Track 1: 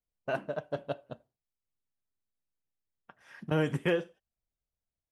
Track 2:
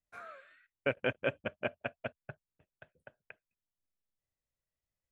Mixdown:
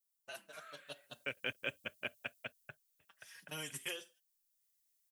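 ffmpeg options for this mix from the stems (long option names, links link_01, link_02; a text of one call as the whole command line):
ffmpeg -i stem1.wav -i stem2.wav -filter_complex "[0:a]highshelf=frequency=2000:gain=12,asplit=2[link_01][link_02];[link_02]adelay=5.2,afreqshift=-0.77[link_03];[link_01][link_03]amix=inputs=2:normalize=1,volume=-4.5dB,afade=type=in:start_time=0.81:duration=0.57:silence=0.223872,afade=type=out:start_time=2.21:duration=0.63:silence=0.281838,asplit=2[link_04][link_05];[1:a]equalizer=frequency=690:width=1.5:gain=-3.5,adelay=400,volume=-5.5dB[link_06];[link_05]apad=whole_len=243148[link_07];[link_06][link_07]sidechaincompress=threshold=-49dB:ratio=8:attack=39:release=1120[link_08];[link_04][link_08]amix=inputs=2:normalize=0,lowshelf=frequency=420:gain=-7,acrossover=split=460|3000[link_09][link_10][link_11];[link_10]acompressor=threshold=-56dB:ratio=1.5[link_12];[link_09][link_12][link_11]amix=inputs=3:normalize=0,crystalizer=i=7:c=0" out.wav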